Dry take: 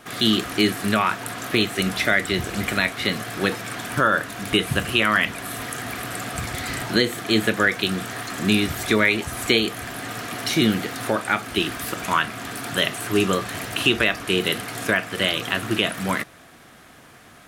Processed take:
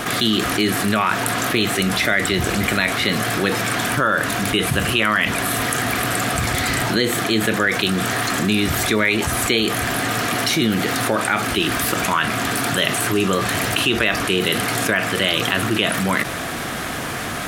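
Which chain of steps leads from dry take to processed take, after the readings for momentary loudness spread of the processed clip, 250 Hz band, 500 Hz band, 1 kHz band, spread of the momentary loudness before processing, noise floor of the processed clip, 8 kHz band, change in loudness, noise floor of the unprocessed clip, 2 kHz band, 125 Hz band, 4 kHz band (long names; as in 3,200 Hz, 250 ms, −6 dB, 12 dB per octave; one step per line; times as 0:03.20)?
3 LU, +3.0 dB, +3.0 dB, +5.0 dB, 9 LU, −26 dBFS, +8.0 dB, +3.5 dB, −48 dBFS, +3.5 dB, +5.0 dB, +3.0 dB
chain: envelope flattener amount 70%
level −1.5 dB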